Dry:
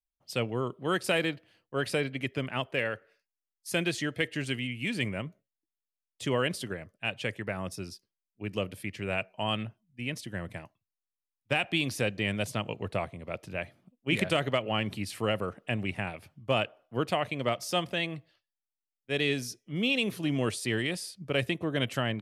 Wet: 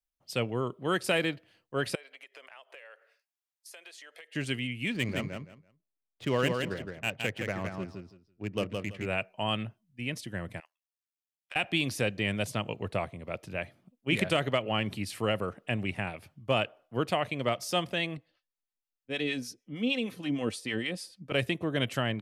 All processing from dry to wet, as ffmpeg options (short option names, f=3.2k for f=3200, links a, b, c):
-filter_complex "[0:a]asettb=1/sr,asplit=3[a][b][c];[a]atrim=end=1.954[d];[b]atrim=start=1.95:end=4.35,asetpts=PTS-STARTPTS,afade=t=in:d=0.004:c=qsin,afade=t=out:st=2.396:d=0.004:c=qsin,highpass=f=530:w=0.5412,highpass=f=530:w=1.3066,acompressor=threshold=-46dB:ratio=10:attack=3.2:release=140:knee=1:detection=peak[e];[c]atrim=start=4.346[f];[d][e]acrossfade=d=0.004:c1=hsin:c2=qsin[g];[g][f]acrossfade=d=0.004:c1=qsin:c2=hsin,asettb=1/sr,asplit=3[h][i][j];[h]atrim=end=4.924[k];[i]atrim=start=4.92:end=9.06,asetpts=PTS-STARTPTS,afade=t=in:d=0.004:c=qsin,afade=t=out:st=4.136:d=0.004:c=qsin,adynamicsmooth=sensitivity=8:basefreq=1.4k,aecho=1:1:166|332|498:0.596|0.119|0.0238,atrim=end_sample=182574[l];[j]atrim=start=9.056[m];[k][l]acrossfade=d=0.004:c1=hsin:c2=qsin[n];[n][m]acrossfade=d=0.004:c1=qsin:c2=hsin,asettb=1/sr,asplit=3[o][p][q];[o]atrim=end=10.604[r];[p]atrim=start=10.6:end=11.56,asetpts=PTS-STARTPTS,afade=t=in:d=0.004:c=qsin,afade=t=out:st=0.956:d=0.004:c=qsin,highpass=1.5k,acompressor=threshold=-37dB:ratio=4:attack=3.2:release=140:knee=1:detection=peak,tremolo=f=82:d=0.974[s];[q]atrim=start=11.556[t];[r][s]acrossfade=d=0.004:c1=hsin:c2=qsin[u];[u][t]acrossfade=d=0.004:c1=qsin:c2=hsin,asettb=1/sr,asplit=3[v][w][x];[v]atrim=end=18.174[y];[w]atrim=start=18.17:end=21.32,asetpts=PTS-STARTPTS,afade=t=in:d=0.004:c=qsin,afade=t=out:st=3.146:d=0.004:c=qsin,highshelf=f=6.1k:g=-6,aecho=1:1:3.9:0.43,atrim=end_sample=138915,acrossover=split=690[z][aa];[z]aeval=exprs='val(0)*(1-0.7/2+0.7/2*cos(2*PI*6.5*n/s))':c=same[ab];[aa]aeval=exprs='val(0)*(1-0.7/2-0.7/2*cos(2*PI*6.5*n/s))':c=same[ac];[ab][ac]amix=inputs=2:normalize=0[ad];[x]atrim=start=21.316[ae];[y][ad]acrossfade=d=0.004:c1=hsin:c2=qsin[af];[af][ae]acrossfade=d=0.004:c1=qsin:c2=hsin"